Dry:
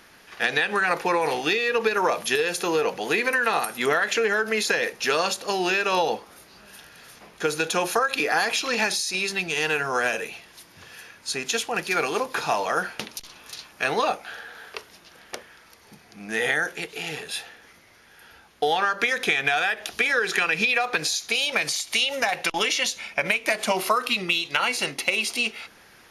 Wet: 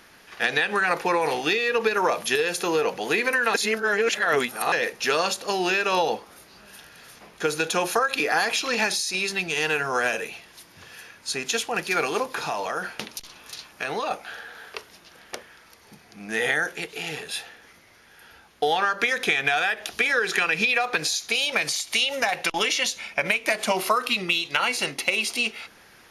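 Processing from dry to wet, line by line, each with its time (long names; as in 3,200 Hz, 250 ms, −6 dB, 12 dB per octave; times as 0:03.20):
0:03.54–0:04.72: reverse
0:12.29–0:14.11: downward compressor 3 to 1, threshold −25 dBFS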